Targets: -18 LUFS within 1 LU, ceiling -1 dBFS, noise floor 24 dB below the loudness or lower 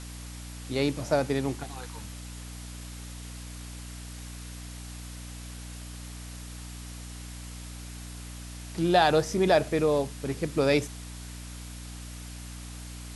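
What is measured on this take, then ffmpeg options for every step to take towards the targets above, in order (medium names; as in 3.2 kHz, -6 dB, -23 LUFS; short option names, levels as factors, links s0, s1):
hum 60 Hz; highest harmonic 300 Hz; hum level -39 dBFS; noise floor -41 dBFS; noise floor target -51 dBFS; loudness -27.0 LUFS; peak level -8.0 dBFS; loudness target -18.0 LUFS
-> -af "bandreject=f=60:t=h:w=6,bandreject=f=120:t=h:w=6,bandreject=f=180:t=h:w=6,bandreject=f=240:t=h:w=6,bandreject=f=300:t=h:w=6"
-af "afftdn=nr=10:nf=-41"
-af "volume=2.82,alimiter=limit=0.891:level=0:latency=1"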